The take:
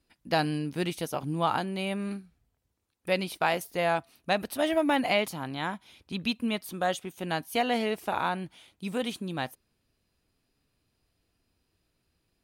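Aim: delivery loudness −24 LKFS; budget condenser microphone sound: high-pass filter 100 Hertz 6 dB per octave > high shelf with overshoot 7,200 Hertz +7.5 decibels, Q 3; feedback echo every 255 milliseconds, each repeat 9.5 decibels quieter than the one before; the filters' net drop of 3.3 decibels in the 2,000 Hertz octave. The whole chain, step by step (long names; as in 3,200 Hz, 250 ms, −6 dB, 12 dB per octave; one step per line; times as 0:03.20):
high-pass filter 100 Hz 6 dB per octave
parametric band 2,000 Hz −3.5 dB
high shelf with overshoot 7,200 Hz +7.5 dB, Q 3
repeating echo 255 ms, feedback 33%, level −9.5 dB
level +6 dB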